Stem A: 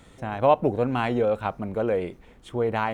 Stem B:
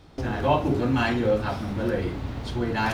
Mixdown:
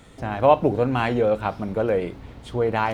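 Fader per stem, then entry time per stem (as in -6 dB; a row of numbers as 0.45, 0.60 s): +2.5, -10.0 dB; 0.00, 0.00 s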